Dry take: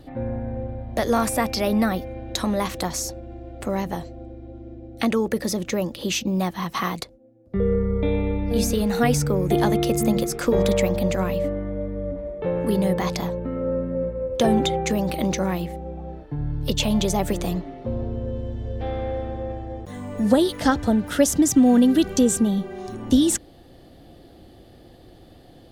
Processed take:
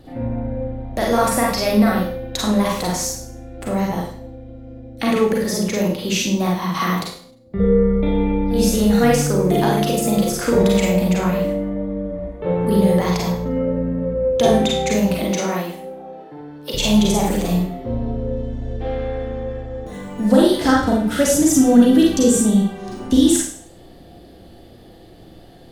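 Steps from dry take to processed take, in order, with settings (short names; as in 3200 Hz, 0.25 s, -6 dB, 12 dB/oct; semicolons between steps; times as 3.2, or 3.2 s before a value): 15.19–16.73 HPF 210 Hz -> 450 Hz 12 dB/oct; reverb RT60 0.50 s, pre-delay 34 ms, DRR -3 dB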